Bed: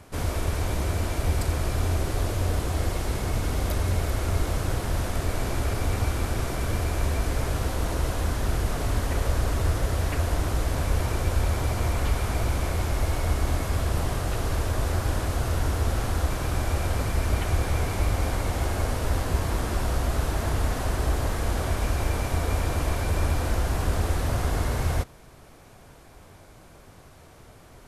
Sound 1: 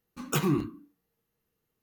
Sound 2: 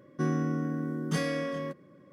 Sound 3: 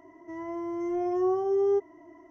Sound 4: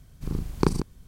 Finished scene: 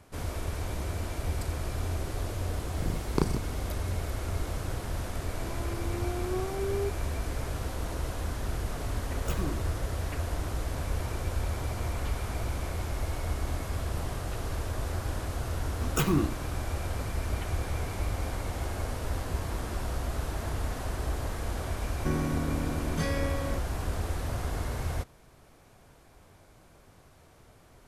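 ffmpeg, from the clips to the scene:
-filter_complex "[1:a]asplit=2[s0][s1];[0:a]volume=0.447[s2];[4:a]atrim=end=1.07,asetpts=PTS-STARTPTS,volume=0.596,afade=t=in:d=0.004:c=hsin,afade=t=out:st=1.066:d=0.004:c=hsin,adelay=2550[s3];[3:a]atrim=end=2.3,asetpts=PTS-STARTPTS,volume=0.398,afade=t=in:d=0.004:c=hsin,afade=t=out:st=2.296:d=0.004:c=hsin,adelay=5100[s4];[s0]atrim=end=1.82,asetpts=PTS-STARTPTS,volume=0.316,afade=t=in:d=0.004:c=hsin,afade=t=out:st=1.816:d=0.004:c=hsin,adelay=8950[s5];[s1]atrim=end=1.82,asetpts=PTS-STARTPTS,afade=t=in:d=0.004:c=hsin,afade=t=out:st=1.816:d=0.004:c=hsin,adelay=15640[s6];[2:a]atrim=end=2.12,asetpts=PTS-STARTPTS,volume=0.794,afade=t=in:d=0.004:c=hsin,afade=t=out:st=2.116:d=0.004:c=hsin,adelay=21860[s7];[s2][s3][s4][s5][s6][s7]amix=inputs=6:normalize=0"

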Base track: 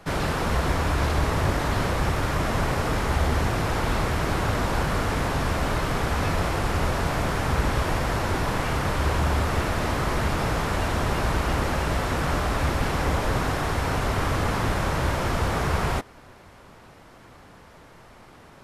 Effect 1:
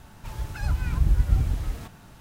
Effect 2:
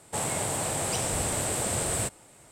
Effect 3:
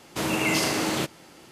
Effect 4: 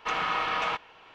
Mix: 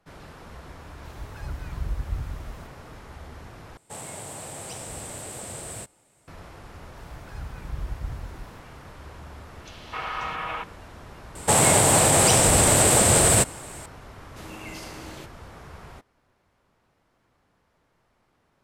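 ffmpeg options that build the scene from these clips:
-filter_complex "[1:a]asplit=2[s0][s1];[2:a]asplit=2[s2][s3];[0:a]volume=0.106[s4];[4:a]acrossover=split=330|3600[s5][s6][s7];[s6]adelay=280[s8];[s5]adelay=510[s9];[s9][s8][s7]amix=inputs=3:normalize=0[s10];[s3]alimiter=level_in=10:limit=0.891:release=50:level=0:latency=1[s11];[s4]asplit=2[s12][s13];[s12]atrim=end=3.774[s14];[s2]atrim=end=2.51,asetpts=PTS-STARTPTS,volume=0.376[s15];[s13]atrim=start=6.276[s16];[s0]atrim=end=2.2,asetpts=PTS-STARTPTS,volume=0.355,afade=t=in:d=0.004:c=hsin,afade=t=out:st=2.196:d=0.004:c=hsin,adelay=800[s17];[s1]atrim=end=2.2,asetpts=PTS-STARTPTS,volume=0.251,afade=t=in:d=0.004:c=hsin,afade=t=out:st=2.196:d=0.004:c=hsin,adelay=6720[s18];[s10]atrim=end=1.14,asetpts=PTS-STARTPTS,volume=0.75,afade=t=in:d=0.004:c=hsin,afade=t=out:st=1.136:d=0.004:c=hsin,adelay=9590[s19];[s11]atrim=end=2.51,asetpts=PTS-STARTPTS,volume=0.473,afade=t=in:d=0.004:c=hsin,afade=t=out:st=2.506:d=0.004:c=hsin,adelay=11350[s20];[3:a]atrim=end=1.51,asetpts=PTS-STARTPTS,volume=0.158,afade=t=in:d=0.004:c=hsin,afade=t=out:st=1.506:d=0.004:c=hsin,adelay=14200[s21];[s14][s15]acrossfade=d=0.004:c1=hsin:c2=hsin[s22];[s22][s16]acrossfade=d=0.004:c1=hsin:c2=hsin[s23];[s23][s17][s18][s19][s20][s21]amix=inputs=6:normalize=0"

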